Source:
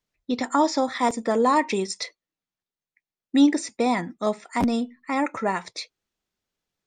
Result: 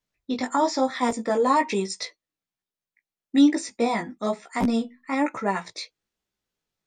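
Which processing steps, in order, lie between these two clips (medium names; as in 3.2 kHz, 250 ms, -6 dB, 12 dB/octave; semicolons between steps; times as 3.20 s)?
chorus 1.1 Hz, delay 15 ms, depth 4.8 ms; trim +2 dB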